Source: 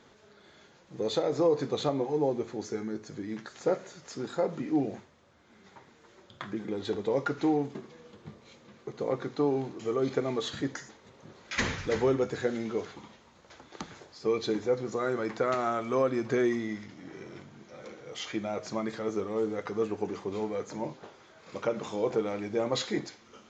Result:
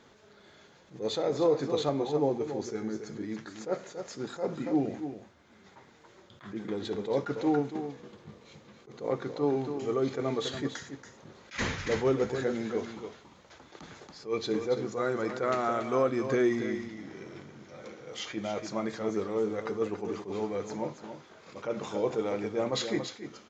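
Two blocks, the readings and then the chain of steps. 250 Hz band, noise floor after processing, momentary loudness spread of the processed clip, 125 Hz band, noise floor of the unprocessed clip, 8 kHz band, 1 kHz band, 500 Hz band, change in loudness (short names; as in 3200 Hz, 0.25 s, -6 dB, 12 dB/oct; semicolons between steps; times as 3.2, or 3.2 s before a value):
0.0 dB, -58 dBFS, 18 LU, 0.0 dB, -59 dBFS, n/a, 0.0 dB, -0.5 dB, -0.5 dB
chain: echo 0.281 s -9.5 dB; attack slew limiter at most 220 dB/s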